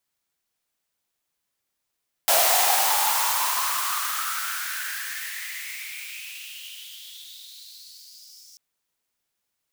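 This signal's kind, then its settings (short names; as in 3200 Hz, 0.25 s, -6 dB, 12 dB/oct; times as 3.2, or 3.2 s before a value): swept filtered noise white, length 6.29 s highpass, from 660 Hz, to 5500 Hz, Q 6.8, exponential, gain ramp -35 dB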